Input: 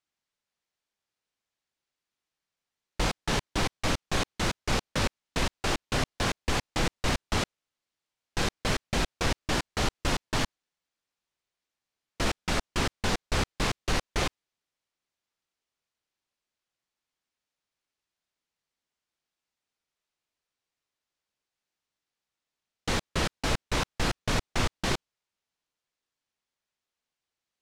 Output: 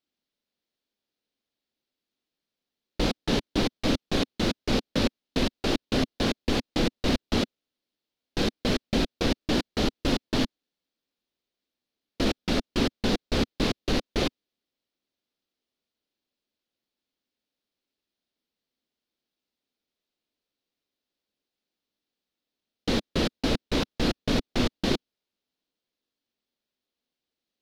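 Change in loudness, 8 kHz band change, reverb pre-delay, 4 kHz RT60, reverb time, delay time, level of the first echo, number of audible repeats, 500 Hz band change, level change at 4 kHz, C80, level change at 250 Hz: +2.5 dB, −5.0 dB, no reverb audible, no reverb audible, no reverb audible, no echo audible, no echo audible, no echo audible, +4.5 dB, +2.0 dB, no reverb audible, +8.0 dB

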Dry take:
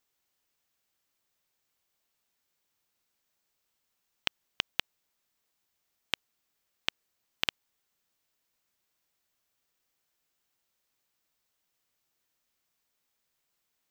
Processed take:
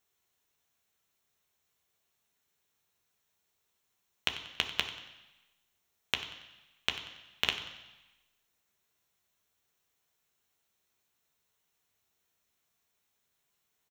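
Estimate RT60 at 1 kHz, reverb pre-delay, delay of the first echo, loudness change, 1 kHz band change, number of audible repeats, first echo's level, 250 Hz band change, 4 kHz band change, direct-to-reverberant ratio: 1.1 s, 3 ms, 93 ms, +0.5 dB, +2.0 dB, 1, −15.0 dB, +1.5 dB, +1.5 dB, 3.5 dB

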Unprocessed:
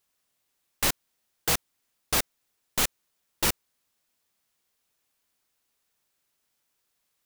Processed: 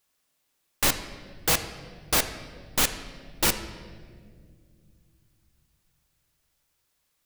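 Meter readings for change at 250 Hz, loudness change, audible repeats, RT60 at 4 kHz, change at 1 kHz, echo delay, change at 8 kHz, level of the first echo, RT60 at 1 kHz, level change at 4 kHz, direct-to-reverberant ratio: +3.5 dB, +2.0 dB, no echo audible, 1.3 s, +2.5 dB, no echo audible, +2.0 dB, no echo audible, 1.6 s, +2.5 dB, 7.5 dB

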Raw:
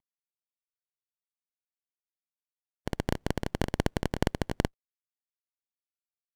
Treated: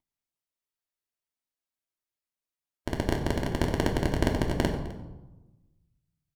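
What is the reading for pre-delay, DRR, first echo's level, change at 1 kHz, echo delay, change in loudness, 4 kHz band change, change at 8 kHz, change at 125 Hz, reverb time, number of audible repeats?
3 ms, 0.0 dB, −17.5 dB, +3.0 dB, 257 ms, +3.0 dB, +2.5 dB, +2.0 dB, +3.5 dB, 1.1 s, 1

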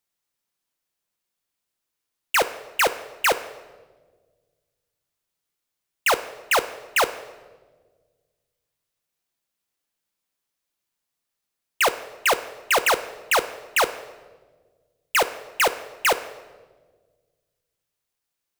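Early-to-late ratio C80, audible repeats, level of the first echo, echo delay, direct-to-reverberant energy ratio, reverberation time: 16.0 dB, no echo audible, no echo audible, no echo audible, 11.0 dB, 1.4 s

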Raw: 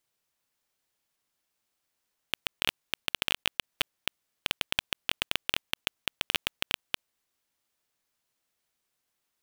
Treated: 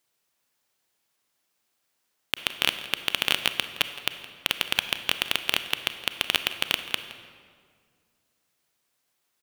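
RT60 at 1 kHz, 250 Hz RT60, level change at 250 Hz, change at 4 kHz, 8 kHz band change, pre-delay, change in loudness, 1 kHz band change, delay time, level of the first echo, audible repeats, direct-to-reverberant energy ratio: 1.9 s, 2.5 s, +4.5 dB, +5.5 dB, +5.5 dB, 30 ms, +5.5 dB, +5.5 dB, 167 ms, −17.5 dB, 1, 9.5 dB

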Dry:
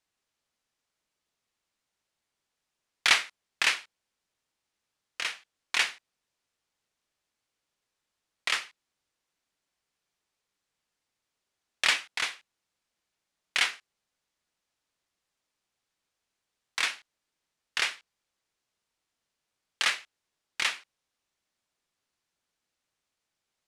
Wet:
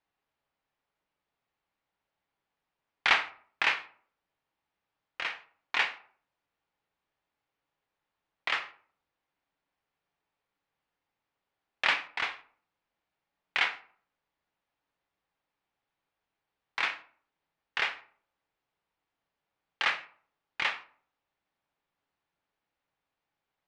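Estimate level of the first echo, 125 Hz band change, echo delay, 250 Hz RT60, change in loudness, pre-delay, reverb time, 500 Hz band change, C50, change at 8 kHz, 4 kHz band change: no echo audible, can't be measured, no echo audible, 0.60 s, −2.0 dB, 3 ms, 0.50 s, +2.0 dB, 15.0 dB, −16.5 dB, −5.0 dB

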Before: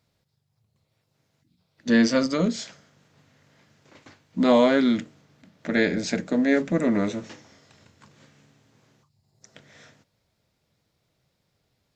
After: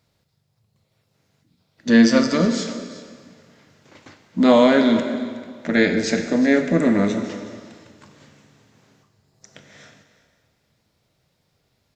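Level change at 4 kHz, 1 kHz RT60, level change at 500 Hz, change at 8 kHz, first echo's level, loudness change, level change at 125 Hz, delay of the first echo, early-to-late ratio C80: +5.0 dB, 1.9 s, +4.5 dB, +5.0 dB, −17.5 dB, +4.5 dB, +4.5 dB, 366 ms, 8.5 dB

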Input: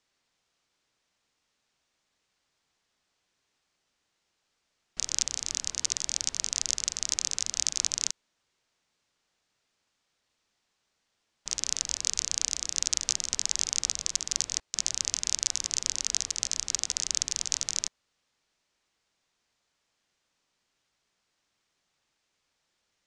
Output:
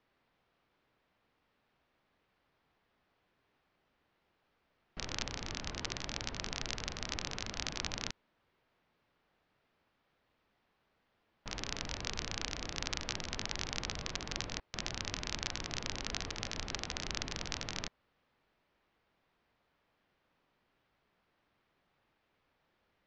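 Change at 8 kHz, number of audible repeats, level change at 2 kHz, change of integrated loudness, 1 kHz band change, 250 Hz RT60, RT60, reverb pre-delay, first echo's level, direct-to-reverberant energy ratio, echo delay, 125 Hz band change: −18.0 dB, no echo audible, +1.0 dB, −11.0 dB, +4.5 dB, no reverb audible, no reverb audible, no reverb audible, no echo audible, no reverb audible, no echo audible, +7.5 dB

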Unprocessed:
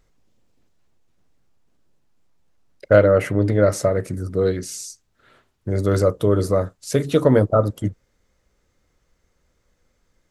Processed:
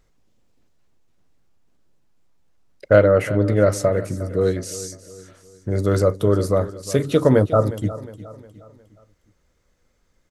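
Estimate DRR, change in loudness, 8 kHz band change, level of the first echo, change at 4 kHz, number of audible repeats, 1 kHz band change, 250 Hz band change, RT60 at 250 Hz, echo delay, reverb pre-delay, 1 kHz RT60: no reverb audible, 0.0 dB, 0.0 dB, −16.0 dB, 0.0 dB, 3, 0.0 dB, 0.0 dB, no reverb audible, 359 ms, no reverb audible, no reverb audible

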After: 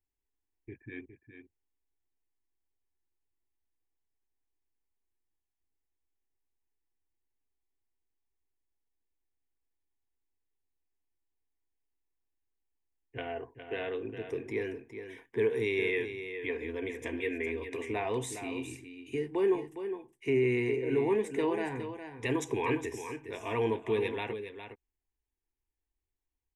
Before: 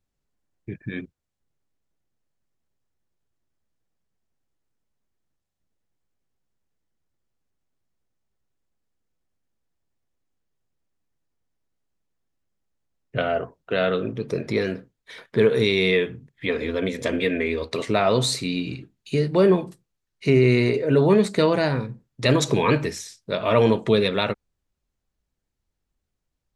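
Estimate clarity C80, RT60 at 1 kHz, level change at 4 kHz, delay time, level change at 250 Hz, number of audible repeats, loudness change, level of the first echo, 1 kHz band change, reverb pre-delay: no reverb audible, no reverb audible, −18.0 dB, 411 ms, −11.5 dB, 1, −11.5 dB, −9.5 dB, −11.0 dB, no reverb audible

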